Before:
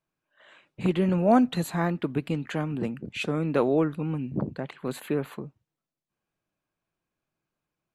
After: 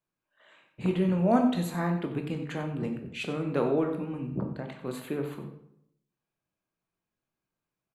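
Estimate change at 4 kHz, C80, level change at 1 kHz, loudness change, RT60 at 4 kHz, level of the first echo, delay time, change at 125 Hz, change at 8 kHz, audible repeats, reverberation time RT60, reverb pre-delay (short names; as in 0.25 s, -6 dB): -3.5 dB, 9.5 dB, -3.5 dB, -3.0 dB, 0.50 s, -14.0 dB, 92 ms, -2.5 dB, -4.0 dB, 1, 0.75 s, 15 ms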